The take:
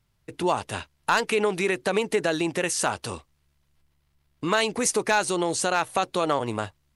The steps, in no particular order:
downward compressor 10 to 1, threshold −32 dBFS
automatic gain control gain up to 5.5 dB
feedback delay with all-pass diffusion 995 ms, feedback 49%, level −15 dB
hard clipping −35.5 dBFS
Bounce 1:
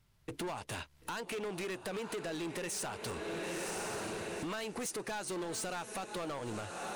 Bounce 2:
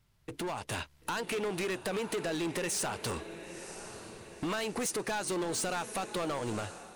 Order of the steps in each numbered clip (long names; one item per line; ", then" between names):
feedback delay with all-pass diffusion, then automatic gain control, then downward compressor, then hard clipping
downward compressor, then feedback delay with all-pass diffusion, then hard clipping, then automatic gain control